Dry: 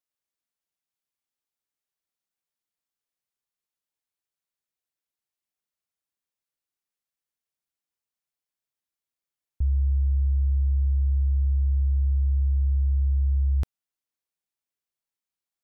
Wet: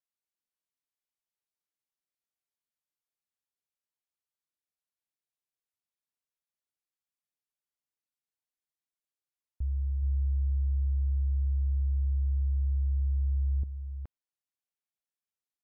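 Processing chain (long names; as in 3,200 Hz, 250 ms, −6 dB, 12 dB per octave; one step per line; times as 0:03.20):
single-tap delay 422 ms −7.5 dB
treble cut that deepens with the level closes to 300 Hz, closed at −22 dBFS
level −8 dB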